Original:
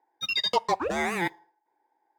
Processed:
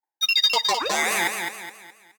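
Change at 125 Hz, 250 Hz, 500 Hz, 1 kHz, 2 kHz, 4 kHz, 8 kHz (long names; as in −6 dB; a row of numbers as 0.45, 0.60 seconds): −6.0, −3.5, −0.5, +2.5, +7.5, +9.5, +15.0 decibels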